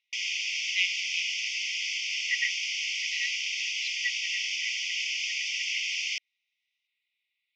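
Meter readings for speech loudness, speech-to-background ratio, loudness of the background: -35.0 LUFS, -6.0 dB, -29.0 LUFS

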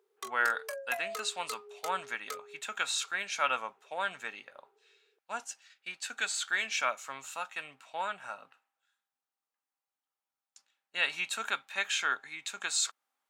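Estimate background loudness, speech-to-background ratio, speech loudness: -42.5 LUFS, 8.5 dB, -34.0 LUFS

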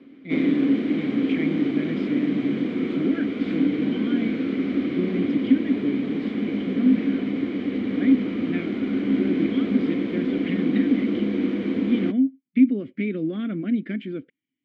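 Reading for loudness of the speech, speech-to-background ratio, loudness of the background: -27.0 LUFS, -2.0 dB, -25.0 LUFS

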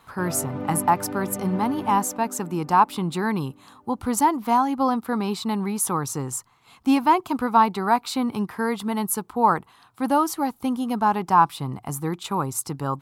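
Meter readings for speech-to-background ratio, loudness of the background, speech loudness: 10.5 dB, -34.0 LUFS, -23.5 LUFS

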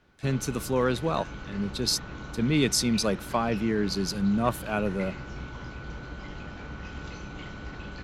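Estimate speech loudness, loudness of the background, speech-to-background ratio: -27.5 LUFS, -40.0 LUFS, 12.5 dB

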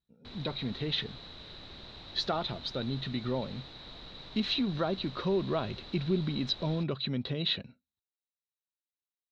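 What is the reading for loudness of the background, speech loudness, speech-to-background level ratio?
-46.5 LUFS, -33.0 LUFS, 13.5 dB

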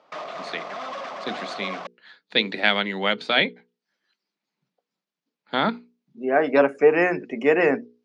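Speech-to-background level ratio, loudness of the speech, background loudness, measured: 12.5 dB, -22.0 LUFS, -34.5 LUFS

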